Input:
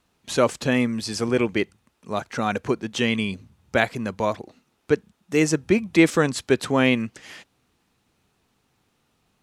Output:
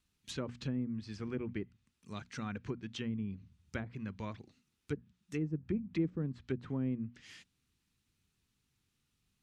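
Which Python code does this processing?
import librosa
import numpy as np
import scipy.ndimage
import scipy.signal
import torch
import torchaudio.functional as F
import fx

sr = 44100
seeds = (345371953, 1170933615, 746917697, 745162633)

y = fx.tone_stack(x, sr, knobs='6-0-2')
y = fx.hum_notches(y, sr, base_hz=60, count=4)
y = fx.env_lowpass_down(y, sr, base_hz=510.0, full_db=-37.0)
y = y * 10.0 ** (6.0 / 20.0)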